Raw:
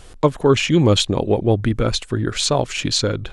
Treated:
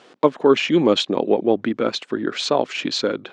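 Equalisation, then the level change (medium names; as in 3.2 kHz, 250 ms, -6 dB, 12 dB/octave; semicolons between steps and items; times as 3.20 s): high-pass 220 Hz 24 dB/octave; distance through air 150 m; +1.0 dB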